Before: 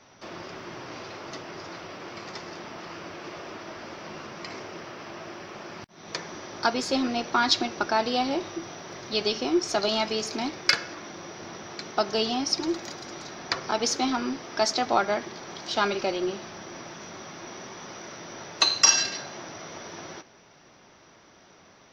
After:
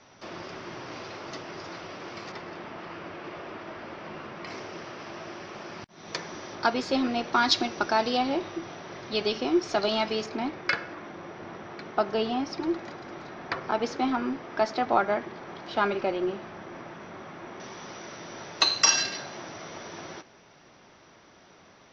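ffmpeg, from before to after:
-af "asetnsamples=n=441:p=0,asendcmd='2.32 lowpass f 3100;4.47 lowpass f 6700;6.55 lowpass f 4000;7.33 lowpass f 6500;8.17 lowpass f 3800;10.26 lowpass f 2300;17.6 lowpass f 5500',lowpass=6700"

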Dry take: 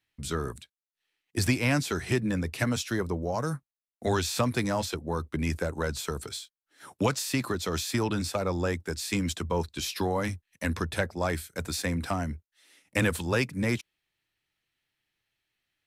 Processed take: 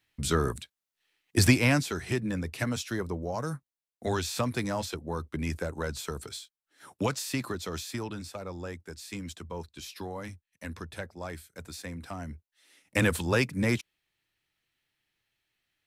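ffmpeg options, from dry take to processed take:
-af "volume=6.31,afade=t=out:st=1.47:d=0.44:silence=0.398107,afade=t=out:st=7.33:d=0.9:silence=0.446684,afade=t=in:st=12.1:d=0.99:silence=0.281838"

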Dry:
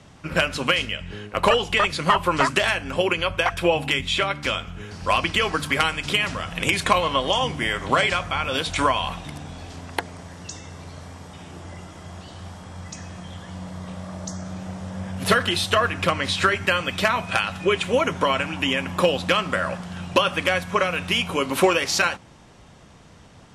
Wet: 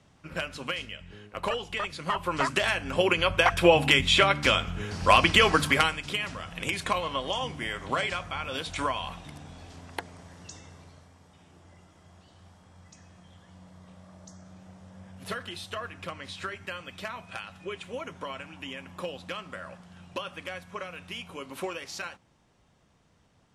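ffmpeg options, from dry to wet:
-af "volume=1.26,afade=t=in:st=2.03:d=0.63:silence=0.446684,afade=t=in:st=2.66:d=1.23:silence=0.446684,afade=t=out:st=5.56:d=0.47:silence=0.281838,afade=t=out:st=10.59:d=0.5:silence=0.421697"

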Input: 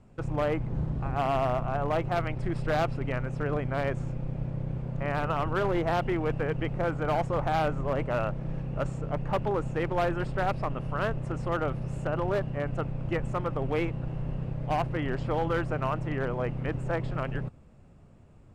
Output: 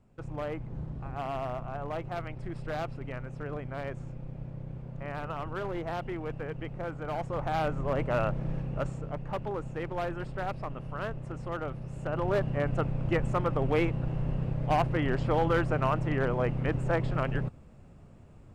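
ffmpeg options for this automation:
-af "volume=2.99,afade=t=in:st=7.08:d=1.3:silence=0.354813,afade=t=out:st=8.38:d=0.81:silence=0.421697,afade=t=in:st=11.94:d=0.55:silence=0.398107"

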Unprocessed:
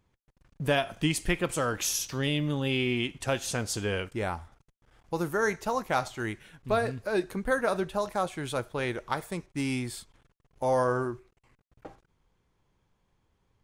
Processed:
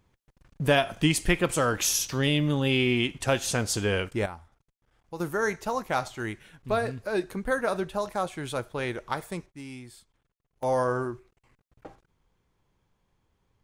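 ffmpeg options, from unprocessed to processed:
-af "asetnsamples=n=441:p=0,asendcmd='4.26 volume volume -7dB;5.2 volume volume 0dB;9.5 volume volume -11dB;10.63 volume volume 0dB',volume=1.58"

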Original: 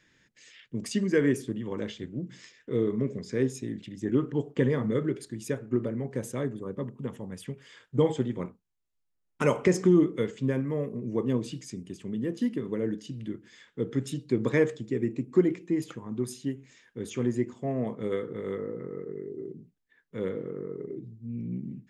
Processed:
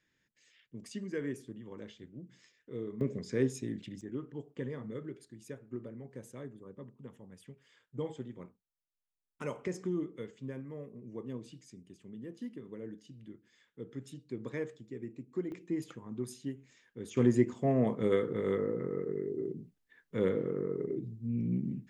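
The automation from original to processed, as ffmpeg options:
-af "asetnsamples=n=441:p=0,asendcmd='3.01 volume volume -3dB;4.01 volume volume -14dB;15.52 volume volume -7dB;17.17 volume volume 2dB',volume=0.224"

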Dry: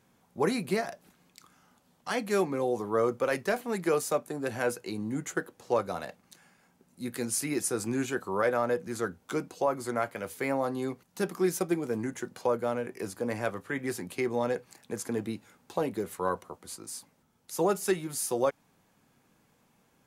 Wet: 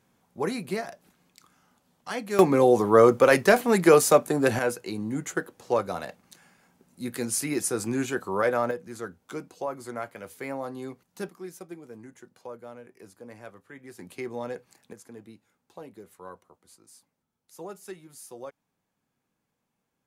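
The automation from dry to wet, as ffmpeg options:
-af "asetnsamples=n=441:p=0,asendcmd='2.39 volume volume 10.5dB;4.59 volume volume 2.5dB;8.71 volume volume -4.5dB;11.29 volume volume -13dB;13.99 volume volume -5dB;14.93 volume volume -13.5dB',volume=0.841"

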